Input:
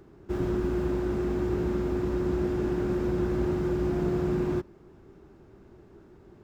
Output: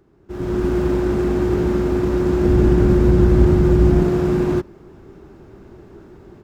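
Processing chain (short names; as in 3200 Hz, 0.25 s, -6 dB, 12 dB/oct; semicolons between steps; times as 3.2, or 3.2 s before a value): tracing distortion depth 0.052 ms; AGC gain up to 14.5 dB; 2.45–4.03 low shelf 160 Hz +12 dB; gain -4 dB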